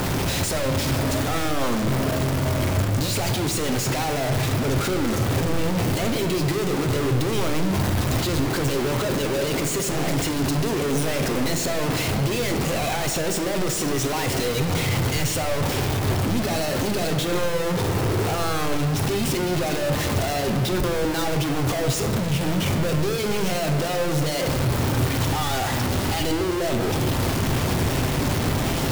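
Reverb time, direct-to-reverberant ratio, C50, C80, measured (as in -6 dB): 1.9 s, 5.0 dB, 7.5 dB, 9.0 dB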